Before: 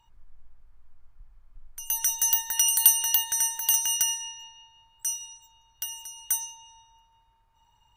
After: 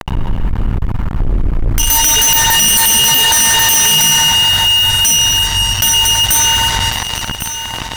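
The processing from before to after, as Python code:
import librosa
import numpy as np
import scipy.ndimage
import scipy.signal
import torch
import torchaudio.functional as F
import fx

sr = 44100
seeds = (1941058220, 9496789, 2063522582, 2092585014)

p1 = fx.highpass(x, sr, hz=95.0, slope=6)
p2 = fx.bass_treble(p1, sr, bass_db=15, treble_db=-8)
p3 = fx.rev_spring(p2, sr, rt60_s=3.8, pass_ms=(44, 52), chirp_ms=30, drr_db=0.5)
p4 = fx.fuzz(p3, sr, gain_db=49.0, gate_db=-52.0)
p5 = p4 + fx.echo_single(p4, sr, ms=1099, db=-21.5, dry=0)
p6 = fx.env_flatten(p5, sr, amount_pct=50)
y = p6 * librosa.db_to_amplitude(4.0)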